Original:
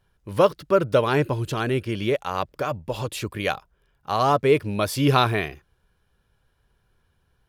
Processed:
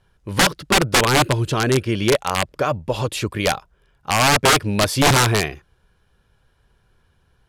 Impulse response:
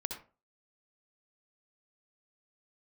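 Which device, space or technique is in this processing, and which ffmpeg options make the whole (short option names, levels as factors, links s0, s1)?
overflowing digital effects unit: -af "aeval=exprs='(mod(5.31*val(0)+1,2)-1)/5.31':c=same,lowpass=11000,volume=2"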